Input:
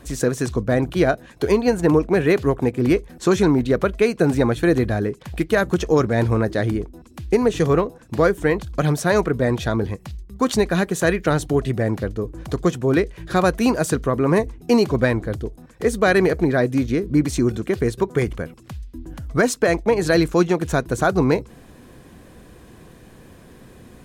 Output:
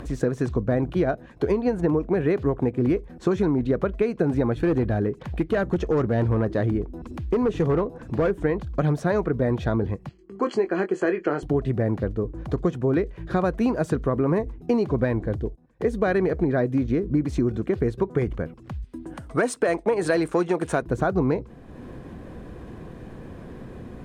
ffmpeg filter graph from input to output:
-filter_complex "[0:a]asettb=1/sr,asplit=3[a][b][c];[a]atrim=end=4.604[d];[b]atrim=start=4.6:end=8.31,asetpts=PTS-STARTPTS,afade=t=in:d=0.004:c=qsin,afade=t=out:st=3.706:d=0.004:c=qsin,acompressor=mode=upward:threshold=-27dB:ratio=2.5:attack=3.2:release=140:knee=2.83:detection=peak,asoftclip=type=hard:threshold=-13.5dB[e];[c]atrim=start=8.306[f];[d][e]acrossfade=d=0.004:c1=hsin:c2=qsin[g];[g][f]acrossfade=d=0.004:c1=qsin:c2=hsin,asettb=1/sr,asplit=3[h][i][j];[h]atrim=end=10.094[k];[i]atrim=start=10.09:end=11.43,asetpts=PTS-STARTPTS,afade=t=in:d=0.004:c=qsin,afade=t=out:st=1.336:d=0.004:c=qsin,asuperstop=centerf=3700:order=12:qfactor=5.6,highpass=350,equalizer=f=360:t=q:w=4:g=8,equalizer=f=590:t=q:w=4:g=-4,equalizer=f=900:t=q:w=4:g=-3,equalizer=f=5.6k:t=q:w=4:g=-8,lowpass=f=7.8k:w=0.5412,lowpass=f=7.8k:w=1.3066,asplit=2[l][m];[m]adelay=21,volume=-8.5dB[n];[l][n]amix=inputs=2:normalize=0,atrim=end_sample=59094[o];[j]atrim=start=11.426[p];[k][o]acrossfade=d=0.004:c1=hsin:c2=qsin[q];[q][p]acrossfade=d=0.004:c1=qsin:c2=hsin,asettb=1/sr,asplit=3[r][s][t];[r]atrim=end=15.044[u];[s]atrim=start=15.04:end=16.04,asetpts=PTS-STARTPTS,afade=t=in:d=0.004:c=qsin,afade=t=out:st=0.996:d=0.004:c=qsin,bandreject=f=1.3k:w=8.9,agate=range=-17dB:threshold=-40dB:ratio=16:release=100:detection=peak[v];[t]atrim=start=16.036[w];[u][v]acrossfade=d=0.004:c1=hsin:c2=qsin[x];[x][w]acrossfade=d=0.004:c1=qsin:c2=hsin,asettb=1/sr,asplit=3[y][z][aa];[y]atrim=end=18.844[ab];[z]atrim=start=18.84:end=20.82,asetpts=PTS-STARTPTS,afade=t=in:d=0.004:c=qsin,afade=t=out:st=1.976:d=0.004:c=qsin,equalizer=f=8.8k:t=o:w=0.24:g=15,acontrast=55,highpass=f=540:p=1[ac];[aa]atrim=start=20.816[ad];[ab][ac]acrossfade=d=0.004:c1=hsin:c2=qsin[ae];[ae][ad]acrossfade=d=0.004:c1=qsin:c2=hsin,acompressor=mode=upward:threshold=-30dB:ratio=2.5,lowpass=f=1.1k:p=1,acompressor=threshold=-18dB:ratio=6"

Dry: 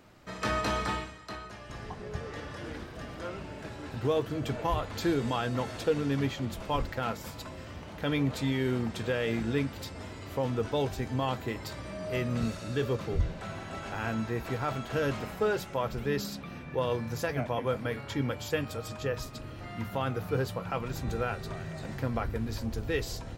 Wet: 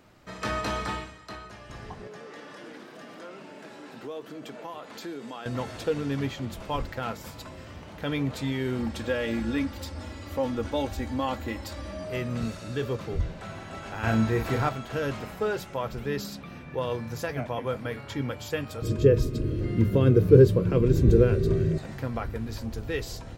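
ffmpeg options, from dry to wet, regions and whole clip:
-filter_complex "[0:a]asettb=1/sr,asplit=3[a][b][c];[a]atrim=end=2.074[d];[b]atrim=start=2.07:end=5.46,asetpts=PTS-STARTPTS,afade=t=in:d=0.004:c=qsin,afade=t=out:st=3.386:d=0.004:c=qsin,highpass=f=190:w=0.5412,highpass=f=190:w=1.3066,acompressor=threshold=-41dB:ratio=2:attack=3.2:release=140:knee=1:detection=peak[e];[c]atrim=start=5.456[f];[d][e]acrossfade=d=0.004:c1=hsin:c2=qsin[g];[g][f]acrossfade=d=0.004:c1=qsin:c2=hsin,asettb=1/sr,asplit=3[h][i][j];[h]atrim=end=8.784[k];[i]atrim=start=8.78:end=12.04,asetpts=PTS-STARTPTS,afade=t=in:d=0.004:c=qsin,afade=t=out:st=3.256:d=0.004:c=qsin,equalizer=f=75:t=o:w=0.43:g=11.5,aecho=1:1:3.6:0.69,atrim=end_sample=143766[l];[j]atrim=start=12.036[m];[k][l]acrossfade=d=0.004:c1=hsin:c2=qsin[n];[n][m]acrossfade=d=0.004:c1=qsin:c2=hsin,asettb=1/sr,asplit=3[o][p][q];[o]atrim=end=14.034[r];[p]atrim=start=14.03:end=14.69,asetpts=PTS-STARTPTS,afade=t=in:d=0.004:c=qsin,afade=t=out:st=0.656:d=0.004:c=qsin,acontrast=27,equalizer=f=71:w=1.2:g=4.5,asplit=2[s][t];[t]adelay=36,volume=-5dB[u];[s][u]amix=inputs=2:normalize=0,atrim=end_sample=29106[v];[q]atrim=start=14.686[w];[r][v]acrossfade=d=0.004:c1=hsin:c2=qsin[x];[x][w]acrossfade=d=0.004:c1=qsin:c2=hsin,asettb=1/sr,asplit=3[y][z][aa];[y]atrim=end=18.824[ab];[z]atrim=start=18.82:end=21.78,asetpts=PTS-STARTPTS,afade=t=in:d=0.004:c=qsin,afade=t=out:st=2.956:d=0.004:c=qsin,lowshelf=f=530:t=q:w=3:g=13,aecho=1:1:1.9:0.38,atrim=end_sample=130536[ac];[aa]atrim=start=21.776[ad];[ab][ac]acrossfade=d=0.004:c1=hsin:c2=qsin[ae];[ae][ad]acrossfade=d=0.004:c1=qsin:c2=hsin"

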